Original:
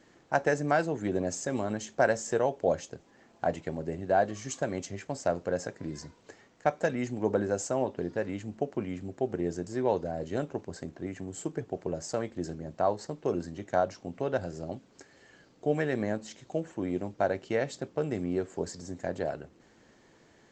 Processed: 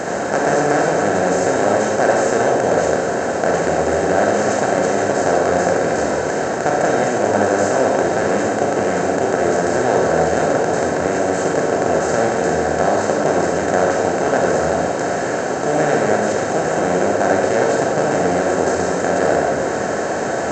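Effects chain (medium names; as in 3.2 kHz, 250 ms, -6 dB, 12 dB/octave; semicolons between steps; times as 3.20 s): spectral levelling over time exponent 0.2; reverberation RT60 1.3 s, pre-delay 33 ms, DRR -0.5 dB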